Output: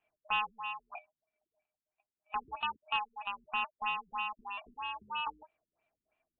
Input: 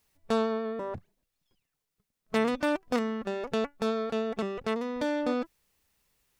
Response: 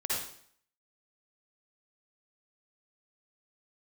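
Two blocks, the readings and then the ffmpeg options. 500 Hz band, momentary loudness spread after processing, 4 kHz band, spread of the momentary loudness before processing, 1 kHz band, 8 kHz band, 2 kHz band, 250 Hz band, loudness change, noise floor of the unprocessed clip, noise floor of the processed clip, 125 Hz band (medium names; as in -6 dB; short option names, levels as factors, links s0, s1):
-29.5 dB, 9 LU, +1.0 dB, 6 LU, +0.5 dB, under -30 dB, 0.0 dB, -30.0 dB, -6.0 dB, -85 dBFS, under -85 dBFS, under -20 dB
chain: -filter_complex "[0:a]afftfilt=real='real(if(lt(b,272),68*(eq(floor(b/68),0)*2+eq(floor(b/68),1)*0+eq(floor(b/68),2)*3+eq(floor(b/68),3)*1)+mod(b,68),b),0)':imag='imag(if(lt(b,272),68*(eq(floor(b/68),0)*2+eq(floor(b/68),1)*0+eq(floor(b/68),2)*3+eq(floor(b/68),3)*1)+mod(b,68),b),0)':win_size=2048:overlap=0.75,highshelf=f=2500:t=q:w=1.5:g=-10.5,acrossover=split=430[s0][s1];[s0]aeval=exprs='(mod(473*val(0)+1,2)-1)/473':c=same[s2];[s2][s1]amix=inputs=2:normalize=0,aeval=exprs='val(0)*sin(2*PI*850*n/s)':c=same,afftfilt=real='re*lt(b*sr/1024,360*pow(4400/360,0.5+0.5*sin(2*PI*3.1*pts/sr)))':imag='im*lt(b*sr/1024,360*pow(4400/360,0.5+0.5*sin(2*PI*3.1*pts/sr)))':win_size=1024:overlap=0.75,volume=0.75"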